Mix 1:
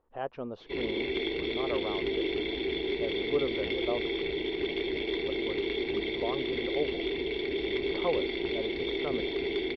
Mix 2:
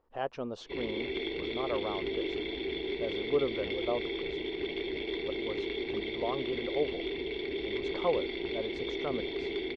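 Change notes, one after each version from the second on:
speech: remove air absorption 270 m; background -3.5 dB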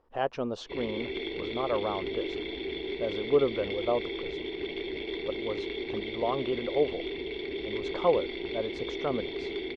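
speech +5.0 dB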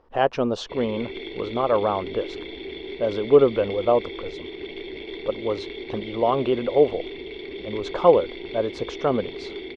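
speech +9.0 dB

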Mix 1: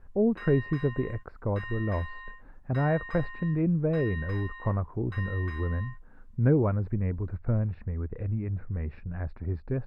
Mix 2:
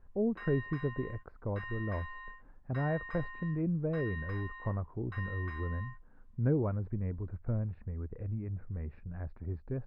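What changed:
speech -6.5 dB; master: add high shelf 2700 Hz -11 dB

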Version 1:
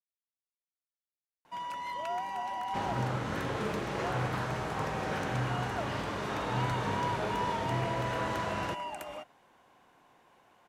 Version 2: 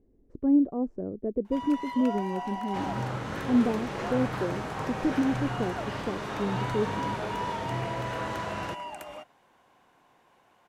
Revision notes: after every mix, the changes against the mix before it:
speech: unmuted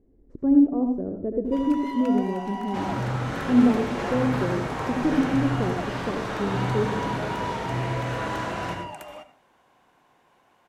reverb: on, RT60 0.40 s

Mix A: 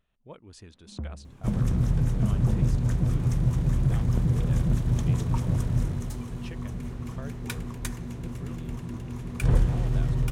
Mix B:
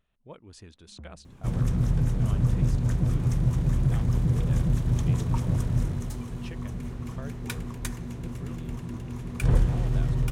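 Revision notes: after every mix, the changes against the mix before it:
first sound -10.5 dB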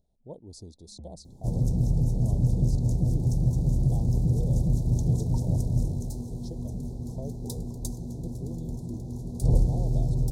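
speech +3.5 dB; master: add inverse Chebyshev band-stop 1200–2900 Hz, stop band 40 dB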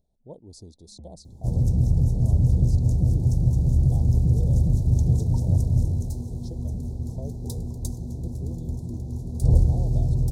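second sound: add bell 79 Hz +11.5 dB 0.7 oct

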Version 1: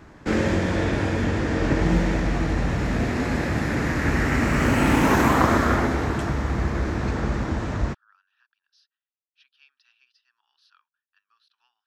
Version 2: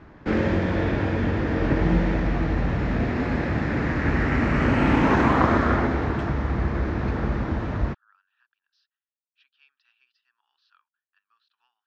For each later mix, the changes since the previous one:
master: add air absorption 200 m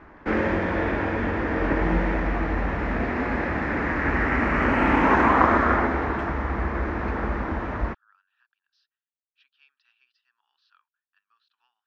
background: add graphic EQ 125/1000/2000/4000/8000 Hz -11/+4/+4/-6/-4 dB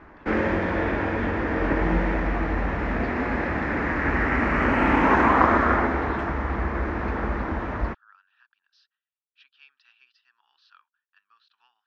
speech +7.0 dB

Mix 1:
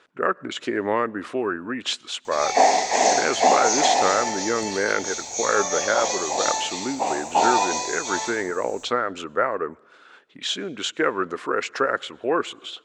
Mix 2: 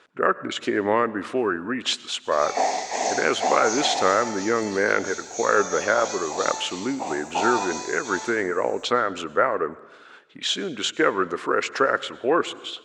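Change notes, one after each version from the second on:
speech: send +10.5 dB; background -6.5 dB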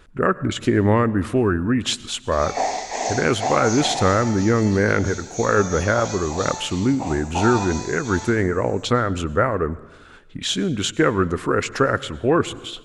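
speech: remove BPF 410–6100 Hz

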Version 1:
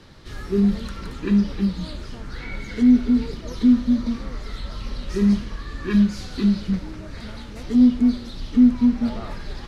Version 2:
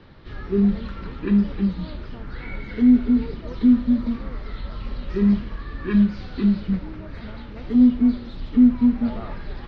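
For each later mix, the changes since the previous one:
background: add Bessel low-pass 2700 Hz, order 8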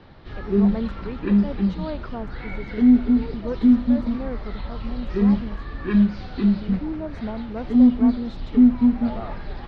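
speech +10.5 dB; master: add bell 750 Hz +6.5 dB 0.52 oct

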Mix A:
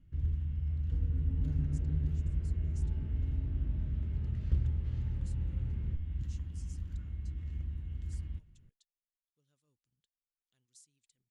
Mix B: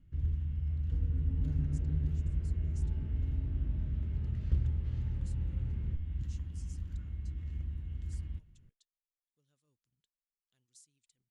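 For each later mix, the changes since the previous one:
none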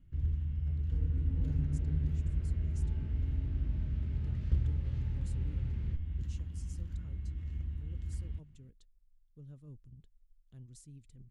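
speech: remove band-pass 5800 Hz, Q 0.79; second sound: remove LPF 1600 Hz 6 dB/oct

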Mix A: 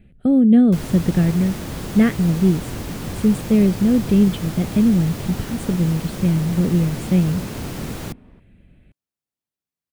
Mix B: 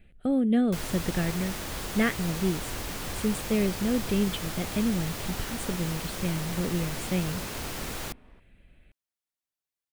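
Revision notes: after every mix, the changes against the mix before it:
master: add bell 160 Hz -13 dB 2.9 oct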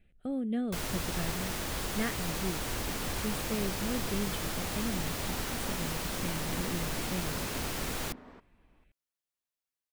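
speech -9.0 dB; second sound +9.0 dB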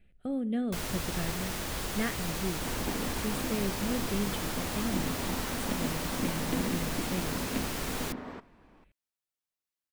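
second sound +9.5 dB; reverb: on, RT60 0.70 s

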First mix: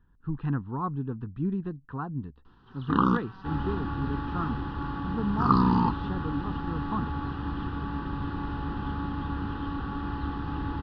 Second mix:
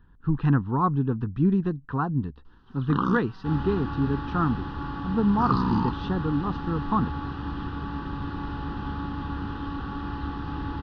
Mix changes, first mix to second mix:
speech +7.5 dB; first sound -3.5 dB; master: remove air absorption 110 m

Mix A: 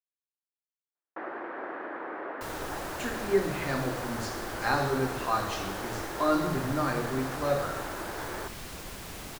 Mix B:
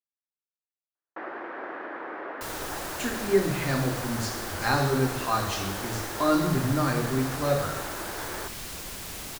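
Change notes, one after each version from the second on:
speech: add low shelf 250 Hz +9.5 dB; master: add high shelf 2800 Hz +7.5 dB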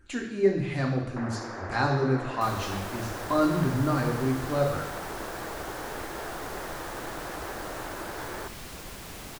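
speech: entry -2.90 s; master: add high shelf 2800 Hz -7.5 dB

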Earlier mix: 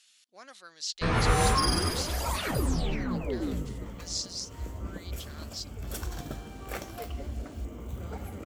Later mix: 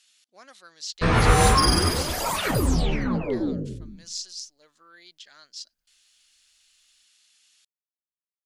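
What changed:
first sound +6.5 dB; second sound: muted

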